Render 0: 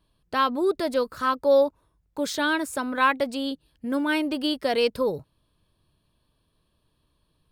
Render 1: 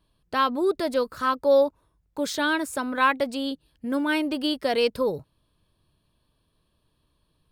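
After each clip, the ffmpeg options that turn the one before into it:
-af anull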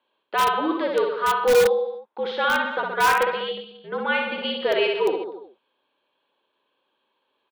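-filter_complex "[0:a]aecho=1:1:60|126|198.6|278.5|366.3:0.631|0.398|0.251|0.158|0.1,highpass=f=450:t=q:w=0.5412,highpass=f=450:t=q:w=1.307,lowpass=f=3500:t=q:w=0.5176,lowpass=f=3500:t=q:w=0.7071,lowpass=f=3500:t=q:w=1.932,afreqshift=-66,asplit=2[s0][s1];[s1]aeval=exprs='(mod(5.01*val(0)+1,2)-1)/5.01':c=same,volume=0.422[s2];[s0][s2]amix=inputs=2:normalize=0"

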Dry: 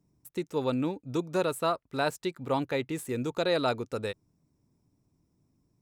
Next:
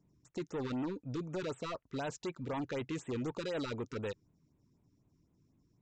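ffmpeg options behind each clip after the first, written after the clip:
-af "alimiter=limit=0.0668:level=0:latency=1:release=10,aresample=16000,asoftclip=type=tanh:threshold=0.0224,aresample=44100,afftfilt=real='re*(1-between(b*sr/1024,600*pow(5700/600,0.5+0.5*sin(2*PI*4*pts/sr))/1.41,600*pow(5700/600,0.5+0.5*sin(2*PI*4*pts/sr))*1.41))':imag='im*(1-between(b*sr/1024,600*pow(5700/600,0.5+0.5*sin(2*PI*4*pts/sr))/1.41,600*pow(5700/600,0.5+0.5*sin(2*PI*4*pts/sr))*1.41))':win_size=1024:overlap=0.75"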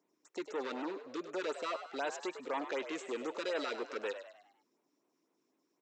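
-filter_complex "[0:a]highpass=f=320:w=0.5412,highpass=f=320:w=1.3066,equalizer=f=1600:t=o:w=2.6:g=4.5,asplit=2[s0][s1];[s1]asplit=5[s2][s3][s4][s5][s6];[s2]adelay=100,afreqshift=73,volume=0.299[s7];[s3]adelay=200,afreqshift=146,volume=0.132[s8];[s4]adelay=300,afreqshift=219,volume=0.0575[s9];[s5]adelay=400,afreqshift=292,volume=0.0254[s10];[s6]adelay=500,afreqshift=365,volume=0.0112[s11];[s7][s8][s9][s10][s11]amix=inputs=5:normalize=0[s12];[s0][s12]amix=inputs=2:normalize=0"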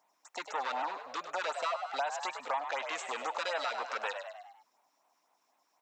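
-af "lowshelf=f=530:t=q:w=3:g=-12.5,acompressor=threshold=0.0126:ratio=6,volume=2.37"

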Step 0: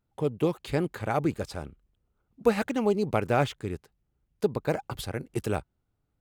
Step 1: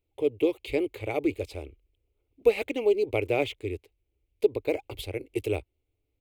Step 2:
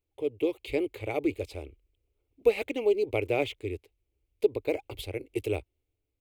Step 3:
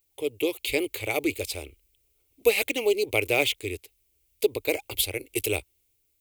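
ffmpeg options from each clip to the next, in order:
-af "firequalizer=gain_entry='entry(100,0);entry(170,-27);entry(290,1);entry(430,4);entry(770,-7);entry(1600,-19);entry(2200,7);entry(5400,-8);entry(13000,-1)':delay=0.05:min_phase=1"
-af "dynaudnorm=f=140:g=7:m=1.5,volume=0.562"
-af "crystalizer=i=8.5:c=0"

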